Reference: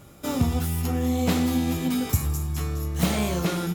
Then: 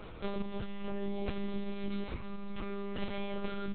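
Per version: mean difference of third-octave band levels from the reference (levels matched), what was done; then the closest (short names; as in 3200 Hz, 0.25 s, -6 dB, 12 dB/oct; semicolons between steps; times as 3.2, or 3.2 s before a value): 14.0 dB: HPF 130 Hz 24 dB/oct; compressor 5:1, threshold -39 dBFS, peak gain reduction 18.5 dB; monotone LPC vocoder at 8 kHz 200 Hz; gain +5 dB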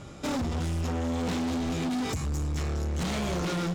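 5.0 dB: LPF 7400 Hz 24 dB/oct; compressor, threshold -25 dBFS, peak gain reduction 9 dB; hard clip -32.5 dBFS, distortion -7 dB; gain +5 dB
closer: second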